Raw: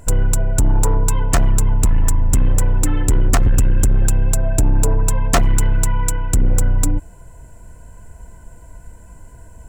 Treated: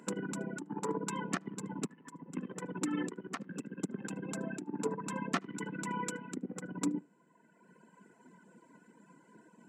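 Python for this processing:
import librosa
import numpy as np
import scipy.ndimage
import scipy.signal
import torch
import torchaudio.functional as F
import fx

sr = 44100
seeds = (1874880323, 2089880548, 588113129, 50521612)

p1 = fx.octave_divider(x, sr, octaves=1, level_db=-5.0)
p2 = p1 + fx.echo_single(p1, sr, ms=75, db=-17.0, dry=0)
p3 = fx.over_compress(p2, sr, threshold_db=-14.0, ratio=-0.5)
p4 = fx.peak_eq(p3, sr, hz=660.0, db=-13.0, octaves=0.62)
p5 = fx.dereverb_blind(p4, sr, rt60_s=1.7)
p6 = scipy.signal.sosfilt(scipy.signal.butter(8, 180.0, 'highpass', fs=sr, output='sos'), p5)
p7 = fx.spacing_loss(p6, sr, db_at_10k=21)
y = p7 * 10.0 ** (-4.5 / 20.0)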